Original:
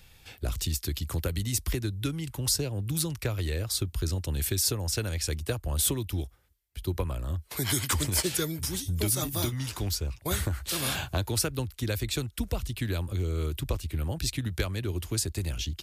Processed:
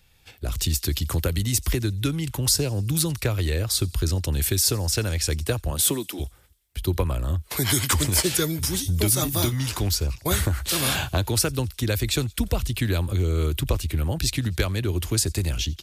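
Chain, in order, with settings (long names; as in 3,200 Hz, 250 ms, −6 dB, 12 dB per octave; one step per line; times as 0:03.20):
in parallel at 0 dB: output level in coarse steps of 23 dB
0:05.70–0:06.19: on the sum: high-pass filter 82 Hz → 290 Hz 24 dB per octave
automatic gain control gain up to 13.5 dB
delay with a high-pass on its return 87 ms, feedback 58%, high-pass 3,400 Hz, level −23 dB
level −7 dB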